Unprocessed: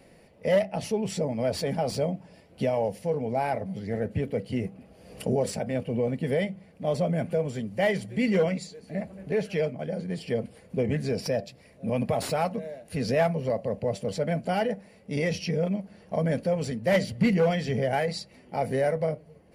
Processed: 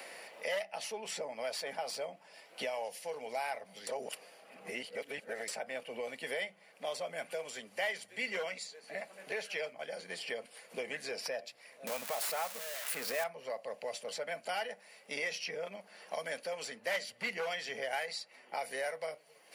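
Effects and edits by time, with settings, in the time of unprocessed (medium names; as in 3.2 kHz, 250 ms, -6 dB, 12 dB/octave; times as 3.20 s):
3.87–5.48 s: reverse
10.40–10.85 s: echo throw 310 ms, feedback 25%, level -12 dB
11.87–13.24 s: zero-crossing glitches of -20.5 dBFS
whole clip: high-pass 960 Hz 12 dB/octave; three bands compressed up and down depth 70%; trim -2.5 dB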